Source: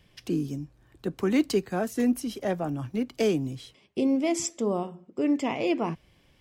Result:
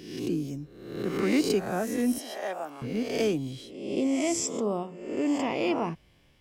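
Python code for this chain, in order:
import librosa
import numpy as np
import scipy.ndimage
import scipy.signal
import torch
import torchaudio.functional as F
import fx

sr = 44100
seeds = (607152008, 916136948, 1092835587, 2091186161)

y = fx.spec_swells(x, sr, rise_s=0.88)
y = fx.highpass(y, sr, hz=580.0, slope=12, at=(2.18, 2.82))
y = y * 10.0 ** (-3.0 / 20.0)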